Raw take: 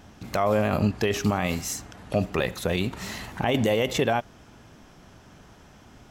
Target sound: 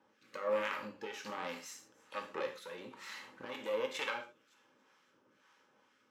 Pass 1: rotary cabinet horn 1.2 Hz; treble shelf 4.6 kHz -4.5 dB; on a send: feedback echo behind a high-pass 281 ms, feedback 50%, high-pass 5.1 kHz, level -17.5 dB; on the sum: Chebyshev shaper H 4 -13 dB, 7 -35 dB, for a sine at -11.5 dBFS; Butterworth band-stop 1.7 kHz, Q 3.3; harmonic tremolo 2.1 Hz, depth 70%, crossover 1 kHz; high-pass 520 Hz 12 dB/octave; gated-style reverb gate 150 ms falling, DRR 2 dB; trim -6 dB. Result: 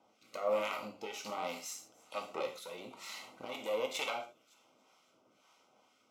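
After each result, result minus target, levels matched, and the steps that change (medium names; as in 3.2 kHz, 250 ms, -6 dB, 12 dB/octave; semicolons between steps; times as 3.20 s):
8 kHz band +5.0 dB; 2 kHz band -3.0 dB
change: treble shelf 4.6 kHz -13 dB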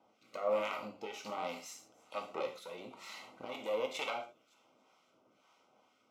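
2 kHz band -4.0 dB
change: Butterworth band-stop 690 Hz, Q 3.3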